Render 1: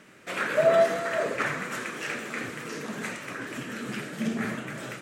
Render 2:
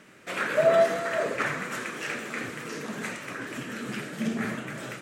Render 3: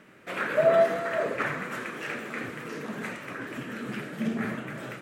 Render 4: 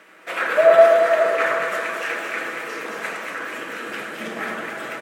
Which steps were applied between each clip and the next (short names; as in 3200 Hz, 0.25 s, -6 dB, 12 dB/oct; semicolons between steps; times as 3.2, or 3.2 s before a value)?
nothing audible
bell 6800 Hz -9 dB 1.8 oct
HPF 510 Hz 12 dB/oct; comb 6.1 ms, depth 32%; on a send: echo with dull and thin repeats by turns 0.109 s, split 1500 Hz, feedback 76%, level -3 dB; on the sum: gain +7 dB